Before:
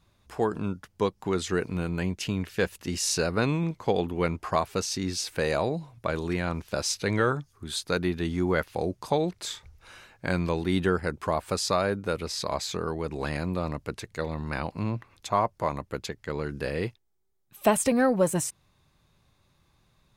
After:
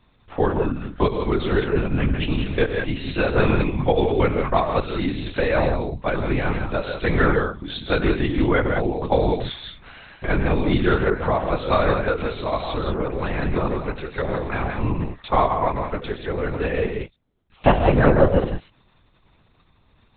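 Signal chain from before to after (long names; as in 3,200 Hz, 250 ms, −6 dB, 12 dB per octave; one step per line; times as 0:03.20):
reverb whose tail is shaped and stops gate 210 ms rising, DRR 4 dB
linear-prediction vocoder at 8 kHz whisper
level +6 dB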